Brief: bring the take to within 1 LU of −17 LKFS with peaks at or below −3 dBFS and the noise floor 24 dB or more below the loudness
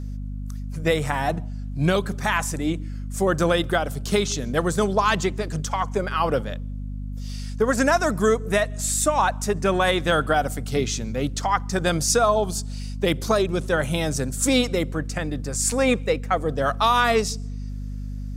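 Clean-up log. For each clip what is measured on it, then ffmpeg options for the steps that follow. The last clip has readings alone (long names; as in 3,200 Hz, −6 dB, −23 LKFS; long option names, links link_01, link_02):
mains hum 50 Hz; hum harmonics up to 250 Hz; level of the hum −28 dBFS; integrated loudness −23.0 LKFS; sample peak −7.0 dBFS; target loudness −17.0 LKFS
→ -af "bandreject=frequency=50:width_type=h:width=4,bandreject=frequency=100:width_type=h:width=4,bandreject=frequency=150:width_type=h:width=4,bandreject=frequency=200:width_type=h:width=4,bandreject=frequency=250:width_type=h:width=4"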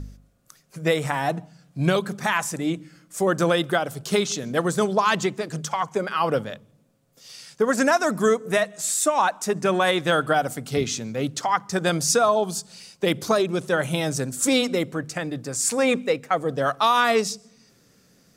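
mains hum none found; integrated loudness −23.0 LKFS; sample peak −7.5 dBFS; target loudness −17.0 LKFS
→ -af "volume=6dB,alimiter=limit=-3dB:level=0:latency=1"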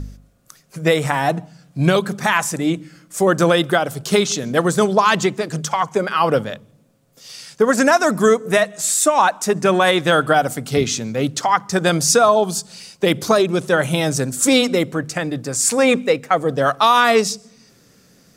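integrated loudness −17.5 LKFS; sample peak −3.0 dBFS; background noise floor −54 dBFS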